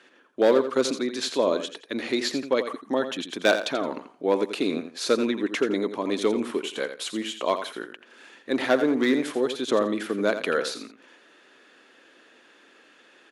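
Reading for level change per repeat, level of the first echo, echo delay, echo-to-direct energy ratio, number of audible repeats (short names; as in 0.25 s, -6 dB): -12.5 dB, -10.0 dB, 85 ms, -10.0 dB, 2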